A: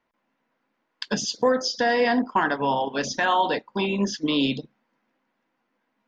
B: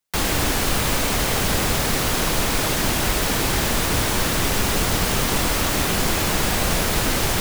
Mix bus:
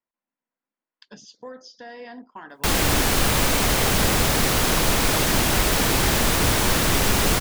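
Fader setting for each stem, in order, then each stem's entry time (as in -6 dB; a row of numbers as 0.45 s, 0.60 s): -18.5 dB, +1.0 dB; 0.00 s, 2.50 s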